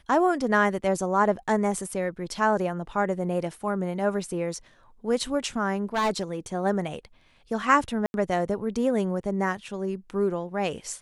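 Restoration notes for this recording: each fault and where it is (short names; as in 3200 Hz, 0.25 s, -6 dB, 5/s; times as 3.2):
5.94–6.23 clipped -20.5 dBFS
8.06–8.14 gap 81 ms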